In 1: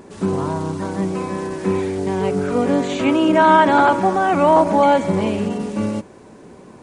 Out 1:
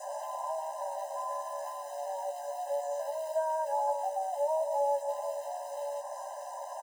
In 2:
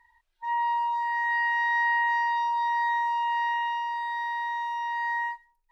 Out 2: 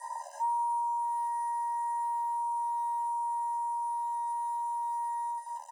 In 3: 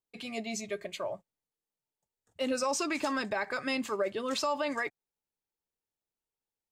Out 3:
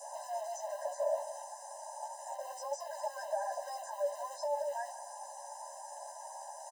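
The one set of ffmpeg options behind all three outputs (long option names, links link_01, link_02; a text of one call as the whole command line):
ffmpeg -i in.wav -filter_complex "[0:a]aeval=exprs='val(0)+0.5*0.0794*sgn(val(0))':channel_layout=same,asuperstop=centerf=2800:order=8:qfactor=0.63,asplit=2[link_01][link_02];[link_02]adelay=177,lowpass=frequency=1100:poles=1,volume=-15.5dB,asplit=2[link_03][link_04];[link_04]adelay=177,lowpass=frequency=1100:poles=1,volume=0.26,asplit=2[link_05][link_06];[link_06]adelay=177,lowpass=frequency=1100:poles=1,volume=0.26[link_07];[link_01][link_03][link_05][link_07]amix=inputs=4:normalize=0,aresample=22050,aresample=44100,acrossover=split=430|4000[link_08][link_09][link_10];[link_08]acompressor=threshold=-28dB:ratio=4[link_11];[link_09]acompressor=threshold=-28dB:ratio=4[link_12];[link_10]acompressor=threshold=-52dB:ratio=4[link_13];[link_11][link_12][link_13]amix=inputs=3:normalize=0,acrossover=split=560[link_14][link_15];[link_14]acrusher=bits=6:mode=log:mix=0:aa=0.000001[link_16];[link_16][link_15]amix=inputs=2:normalize=0,adynamicequalizer=threshold=0.01:dfrequency=930:dqfactor=4.8:tfrequency=930:tqfactor=4.8:attack=5:release=100:ratio=0.375:range=1.5:mode=cutabove:tftype=bell,areverse,acompressor=mode=upward:threshold=-37dB:ratio=2.5,areverse,asplit=2[link_17][link_18];[link_18]adelay=14,volume=-3dB[link_19];[link_17][link_19]amix=inputs=2:normalize=0,bandreject=frequency=64.18:width_type=h:width=4,bandreject=frequency=128.36:width_type=h:width=4,bandreject=frequency=192.54:width_type=h:width=4,bandreject=frequency=256.72:width_type=h:width=4,bandreject=frequency=320.9:width_type=h:width=4,bandreject=frequency=385.08:width_type=h:width=4,bandreject=frequency=449.26:width_type=h:width=4,bandreject=frequency=513.44:width_type=h:width=4,asubboost=boost=5:cutoff=230,afftfilt=real='re*eq(mod(floor(b*sr/1024/530),2),1)':imag='im*eq(mod(floor(b*sr/1024/530),2),1)':win_size=1024:overlap=0.75,volume=-3.5dB" out.wav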